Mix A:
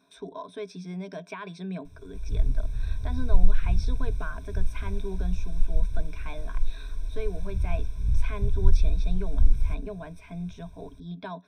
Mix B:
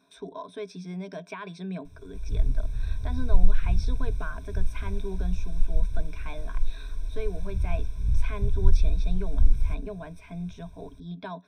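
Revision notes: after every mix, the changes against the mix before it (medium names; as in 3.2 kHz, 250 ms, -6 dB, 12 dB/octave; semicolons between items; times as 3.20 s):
no change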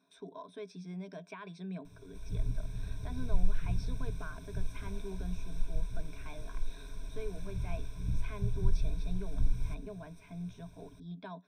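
speech -8.5 dB; master: add resonant low shelf 100 Hz -9.5 dB, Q 1.5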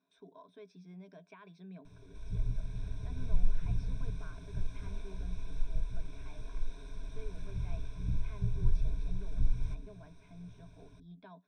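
speech -8.0 dB; master: add distance through air 70 m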